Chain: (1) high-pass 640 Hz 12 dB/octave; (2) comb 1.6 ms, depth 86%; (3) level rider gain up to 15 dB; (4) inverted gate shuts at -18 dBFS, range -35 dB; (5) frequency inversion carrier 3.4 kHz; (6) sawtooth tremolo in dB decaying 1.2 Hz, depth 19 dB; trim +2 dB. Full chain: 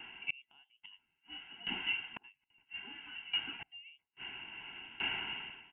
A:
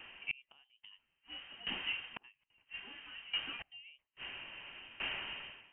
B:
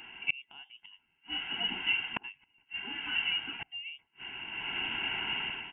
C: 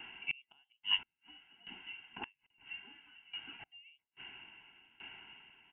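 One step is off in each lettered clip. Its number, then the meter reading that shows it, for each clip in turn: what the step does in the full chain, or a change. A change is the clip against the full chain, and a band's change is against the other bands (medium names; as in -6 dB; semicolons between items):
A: 2, 500 Hz band +3.5 dB; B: 6, loudness change +6.5 LU; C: 3, crest factor change +7.0 dB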